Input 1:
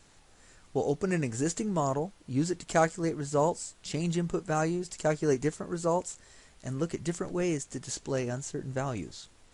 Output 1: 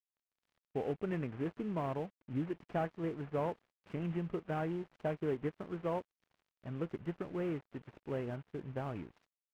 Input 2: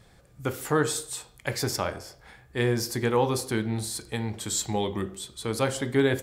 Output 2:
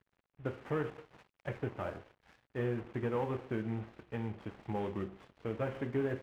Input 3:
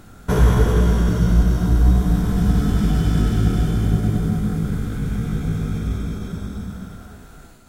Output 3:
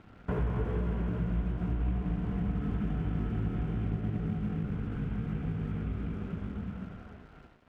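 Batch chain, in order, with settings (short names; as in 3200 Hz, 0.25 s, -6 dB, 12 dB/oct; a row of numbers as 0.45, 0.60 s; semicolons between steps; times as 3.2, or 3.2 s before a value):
CVSD 16 kbps; HPF 52 Hz 6 dB/oct; high shelf 2100 Hz -8 dB; compressor 2.5:1, threshold -26 dBFS; crossover distortion -53 dBFS; gain -5 dB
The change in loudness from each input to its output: -8.0, -10.5, -14.0 LU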